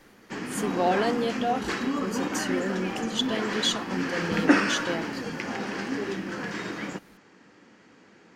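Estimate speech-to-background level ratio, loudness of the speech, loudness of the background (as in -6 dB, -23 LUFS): -0.5 dB, -30.0 LUFS, -29.5 LUFS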